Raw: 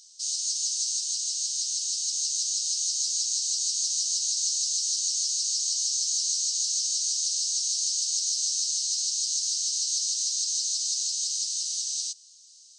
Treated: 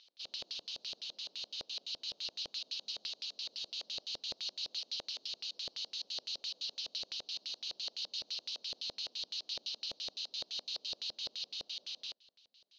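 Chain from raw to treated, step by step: Chebyshev band-pass 210–4000 Hz, order 3; LFO low-pass square 5.9 Hz 580–2700 Hz; trim +3.5 dB

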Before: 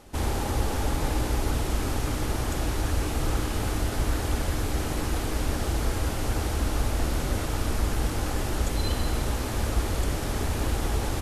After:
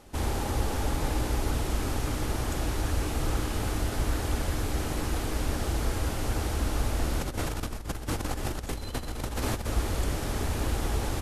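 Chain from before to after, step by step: 7.21–9.66 s: compressor with a negative ratio -29 dBFS, ratio -0.5; trim -2 dB

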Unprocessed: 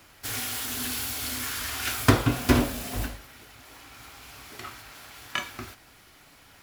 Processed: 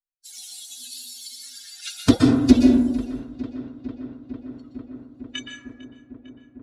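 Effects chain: expander on every frequency bin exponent 3; low-pass 10 kHz 24 dB/octave; filtered feedback delay 451 ms, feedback 81%, low-pass 3.7 kHz, level -19 dB; plate-style reverb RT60 0.99 s, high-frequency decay 0.35×, pre-delay 110 ms, DRR 1.5 dB; in parallel at -4.5 dB: sine folder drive 7 dB, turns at -6.5 dBFS; on the sum: graphic EQ 125/250/1000/2000/4000 Hz -4/+12/-7/-8/+6 dB; trim -5 dB

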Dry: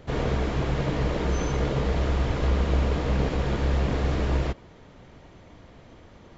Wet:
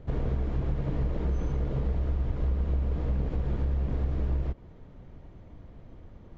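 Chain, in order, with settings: tilt EQ -3 dB/octave; compression 4:1, threshold -17 dBFS, peak gain reduction 9 dB; trim -8 dB

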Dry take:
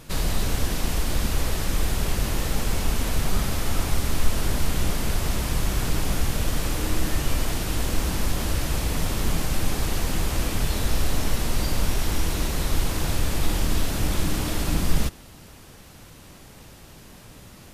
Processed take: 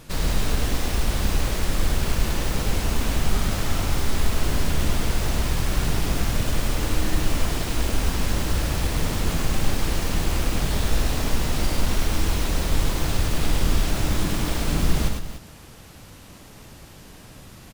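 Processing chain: self-modulated delay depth 0.38 ms; loudspeakers at several distances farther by 35 m -4 dB, 100 m -12 dB

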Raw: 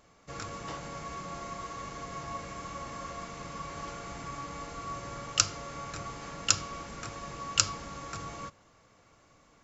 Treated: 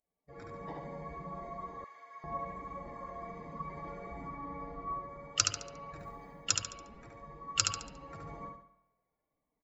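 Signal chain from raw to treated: expander on every frequency bin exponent 2; 4.27–5.09 s: distance through air 95 m; in parallel at -2 dB: level held to a coarse grid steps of 14 dB; 5.99–6.44 s: on the sum: companded quantiser 8-bit; on a send: feedback delay 71 ms, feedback 38%, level -4.5 dB; on the sum: spring tank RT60 1 s, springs 49 ms, chirp 45 ms, DRR 14 dB; level rider gain up to 6 dB; 1.84–2.24 s: high-pass 1.3 kHz 12 dB/octave; trim -6 dB

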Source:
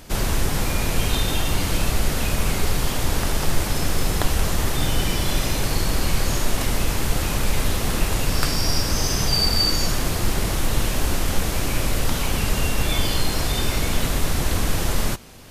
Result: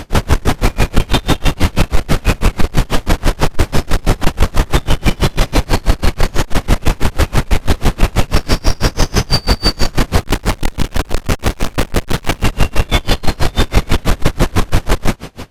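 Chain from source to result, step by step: saturation -19 dBFS, distortion -11 dB; low-pass 2.6 kHz 6 dB/octave; 10.20–12.44 s: hard clipper -29 dBFS, distortion -13 dB; loudness maximiser +22 dB; logarithmic tremolo 6.1 Hz, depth 31 dB

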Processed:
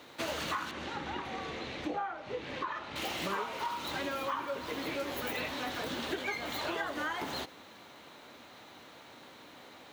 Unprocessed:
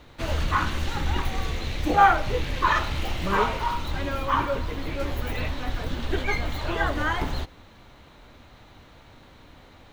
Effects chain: high-pass 250 Hz 12 dB/octave; treble shelf 4.9 kHz +5 dB; compression 10:1, threshold -32 dBFS, peak gain reduction 20.5 dB; 0.71–2.96 s: tape spacing loss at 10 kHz 20 dB

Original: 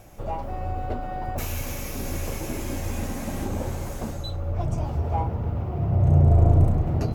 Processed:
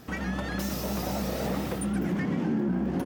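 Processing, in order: high-pass 47 Hz 12 dB/octave; peaking EQ 630 Hz -8.5 dB 1.4 oct; compression 16:1, threshold -27 dBFS, peak gain reduction 15 dB; echo from a far wall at 50 m, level -10 dB; speed mistake 33 rpm record played at 78 rpm; vibrato with a chosen wave saw up 4.1 Hz, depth 100 cents; trim +2.5 dB

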